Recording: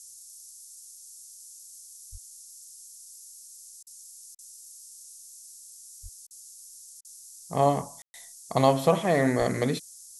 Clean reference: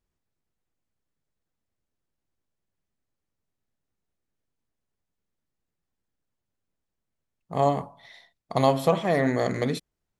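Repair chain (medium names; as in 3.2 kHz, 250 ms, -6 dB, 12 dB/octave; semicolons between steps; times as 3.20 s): de-plosive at 2.11/6.02/9.38 s; room tone fill 8.02–8.14 s; interpolate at 3.83/4.35/6.27/7.01 s, 36 ms; noise print and reduce 30 dB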